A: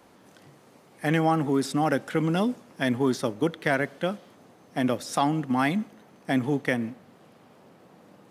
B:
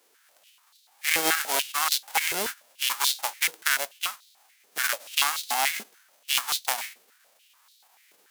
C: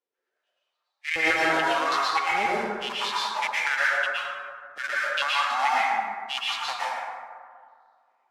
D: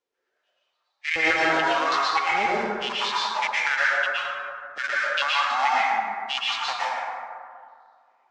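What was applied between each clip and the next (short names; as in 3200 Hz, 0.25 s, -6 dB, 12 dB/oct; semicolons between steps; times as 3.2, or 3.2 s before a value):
spectral whitening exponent 0.1; added harmonics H 7 -21 dB, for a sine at -5.5 dBFS; stepped high-pass 6.9 Hz 420–3900 Hz
per-bin expansion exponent 1.5; LPF 3200 Hz 12 dB/oct; plate-style reverb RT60 2 s, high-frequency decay 0.35×, pre-delay 0.1 s, DRR -7.5 dB
LPF 7100 Hz 24 dB/oct; in parallel at -2 dB: compressor, threshold -34 dBFS, peak gain reduction 14.5 dB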